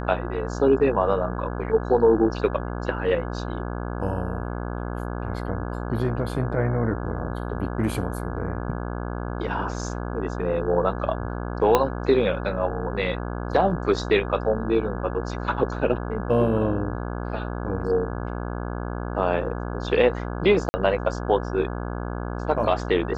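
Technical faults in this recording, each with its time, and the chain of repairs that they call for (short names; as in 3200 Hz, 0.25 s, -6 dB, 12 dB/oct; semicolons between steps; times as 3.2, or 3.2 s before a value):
buzz 60 Hz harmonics 28 -30 dBFS
11.75 pop -4 dBFS
20.69–20.74 gap 50 ms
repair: de-click; de-hum 60 Hz, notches 28; interpolate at 20.69, 50 ms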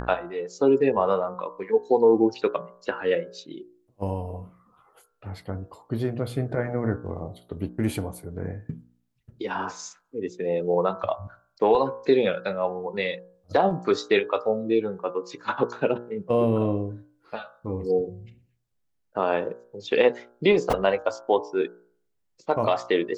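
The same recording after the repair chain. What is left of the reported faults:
11.75 pop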